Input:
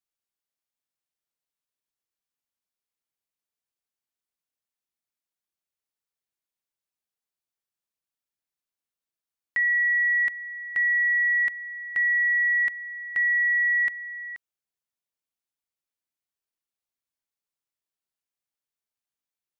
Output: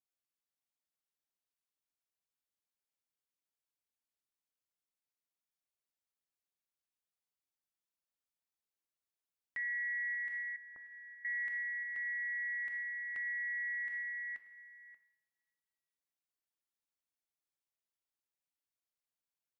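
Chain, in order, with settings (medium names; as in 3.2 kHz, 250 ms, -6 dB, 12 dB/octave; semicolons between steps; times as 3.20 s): reverberation, pre-delay 3 ms, DRR 8.5 dB; compression, threshold -22 dBFS, peak gain reduction 4 dB; peak limiter -27.5 dBFS, peak gain reduction 9 dB; AM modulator 230 Hz, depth 30%; 10.56–11.25 s: low-pass 1.2 kHz 24 dB/octave; echo from a far wall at 100 m, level -14 dB; trim -4.5 dB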